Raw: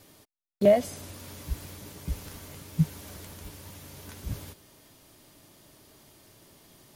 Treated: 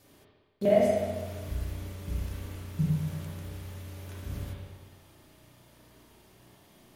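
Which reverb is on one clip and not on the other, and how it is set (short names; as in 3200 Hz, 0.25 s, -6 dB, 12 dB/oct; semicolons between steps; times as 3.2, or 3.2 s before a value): spring tank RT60 1.4 s, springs 33/50 ms, chirp 55 ms, DRR -5 dB; gain -6.5 dB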